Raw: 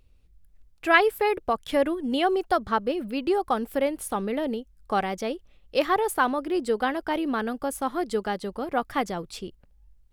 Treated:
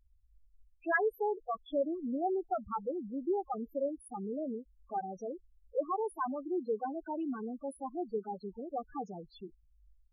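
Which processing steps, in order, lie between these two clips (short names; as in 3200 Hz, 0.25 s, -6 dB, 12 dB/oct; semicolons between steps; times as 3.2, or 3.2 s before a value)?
loudest bins only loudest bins 4; 2.64–3.36 low-pass opened by the level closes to 1200 Hz, open at -20 dBFS; gain -8 dB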